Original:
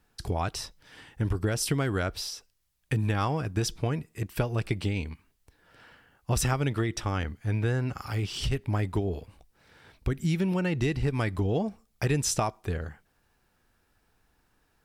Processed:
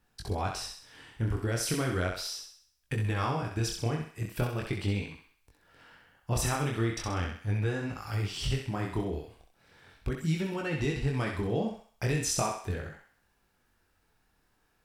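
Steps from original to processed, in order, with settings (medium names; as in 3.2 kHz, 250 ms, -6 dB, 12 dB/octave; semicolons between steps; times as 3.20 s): chorus 0.38 Hz, delay 19 ms, depth 7.6 ms; thinning echo 65 ms, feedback 48%, high-pass 590 Hz, level -4 dB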